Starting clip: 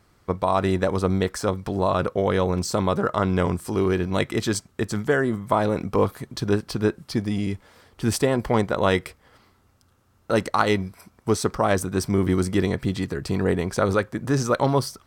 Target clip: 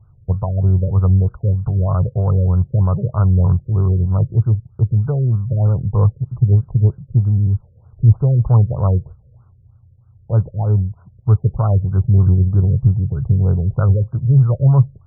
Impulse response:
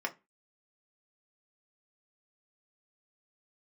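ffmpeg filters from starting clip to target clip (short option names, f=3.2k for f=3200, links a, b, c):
-af "lowshelf=f=180:t=q:w=3:g=13.5,afftfilt=real='re*lt(b*sr/1024,570*pow(1600/570,0.5+0.5*sin(2*PI*3.2*pts/sr)))':imag='im*lt(b*sr/1024,570*pow(1600/570,0.5+0.5*sin(2*PI*3.2*pts/sr)))':win_size=1024:overlap=0.75,volume=-3dB"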